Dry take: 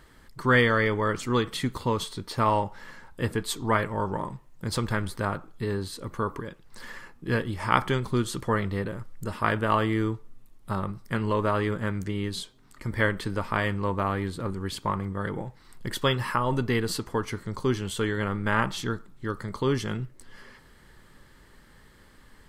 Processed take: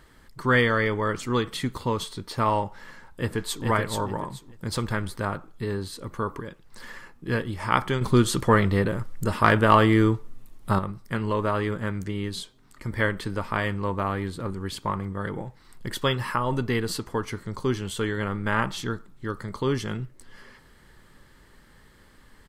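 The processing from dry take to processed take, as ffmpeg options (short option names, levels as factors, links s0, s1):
-filter_complex "[0:a]asplit=2[s0][s1];[s1]afade=t=in:st=2.89:d=0.01,afade=t=out:st=3.65:d=0.01,aecho=0:1:430|860|1290|1720:0.707946|0.176986|0.0442466|0.0110617[s2];[s0][s2]amix=inputs=2:normalize=0,asettb=1/sr,asplit=3[s3][s4][s5];[s3]atrim=end=8.014[s6];[s4]atrim=start=8.01:end=10.79,asetpts=PTS-STARTPTS,afade=t=in:d=0.004:c=qsin,afade=t=out:st=2.776:d=0.004:c=qsin,acontrast=86[s7];[s5]atrim=start=10.786[s8];[s6][s7]acrossfade=d=0.004:c1=hsin:c2=qsin[s9];[s9][s8]acrossfade=d=0.004:c1=qsin:c2=hsin"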